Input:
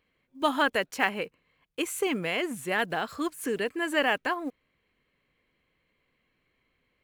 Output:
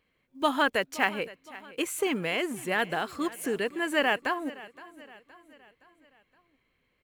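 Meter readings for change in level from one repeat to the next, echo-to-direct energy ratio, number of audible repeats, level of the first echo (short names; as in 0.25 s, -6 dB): -6.0 dB, -18.0 dB, 3, -19.0 dB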